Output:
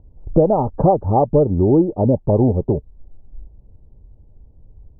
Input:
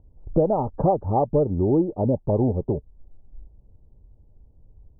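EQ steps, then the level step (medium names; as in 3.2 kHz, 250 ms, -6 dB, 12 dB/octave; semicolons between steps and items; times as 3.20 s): distance through air 260 m; +6.5 dB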